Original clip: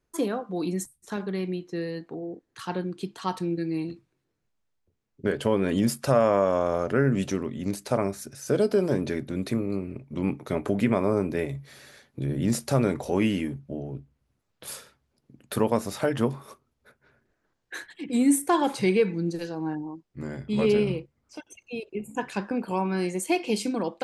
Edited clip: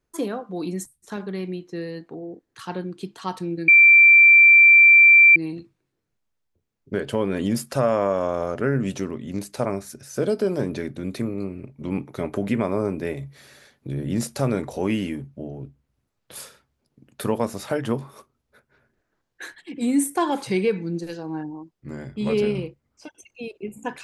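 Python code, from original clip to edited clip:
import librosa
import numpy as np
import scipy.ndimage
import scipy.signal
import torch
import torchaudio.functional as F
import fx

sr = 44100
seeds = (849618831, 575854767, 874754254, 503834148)

y = fx.edit(x, sr, fx.insert_tone(at_s=3.68, length_s=1.68, hz=2350.0, db=-8.0), tone=tone)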